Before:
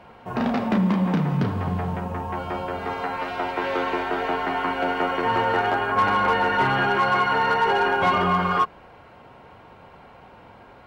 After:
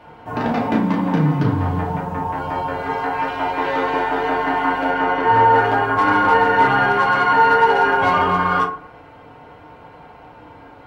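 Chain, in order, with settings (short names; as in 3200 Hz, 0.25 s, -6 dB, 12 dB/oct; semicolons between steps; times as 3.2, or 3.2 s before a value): 4.9–5.57 air absorption 54 m; FDN reverb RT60 0.48 s, low-frequency decay 1×, high-frequency decay 0.45×, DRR -2 dB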